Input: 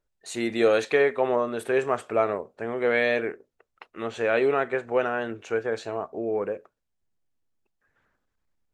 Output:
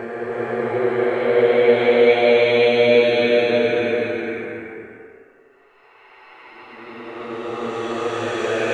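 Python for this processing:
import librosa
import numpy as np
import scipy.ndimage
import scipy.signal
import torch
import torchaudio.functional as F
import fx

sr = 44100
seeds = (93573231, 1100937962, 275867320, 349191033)

y = fx.env_flanger(x, sr, rest_ms=9.6, full_db=-18.5)
y = fx.paulstretch(y, sr, seeds[0], factor=5.3, window_s=0.5, from_s=2.57)
y = fx.rev_gated(y, sr, seeds[1], gate_ms=460, shape='rising', drr_db=-1.5)
y = F.gain(torch.from_numpy(y), 8.0).numpy()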